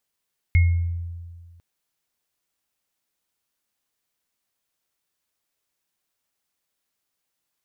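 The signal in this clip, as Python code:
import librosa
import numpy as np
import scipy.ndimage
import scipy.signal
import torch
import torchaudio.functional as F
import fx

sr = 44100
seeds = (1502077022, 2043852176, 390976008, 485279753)

y = fx.additive_free(sr, length_s=1.05, hz=85.5, level_db=-11.5, upper_db=(-11.0,), decay_s=1.73, upper_decays_s=(0.48,), upper_hz=(2160.0,))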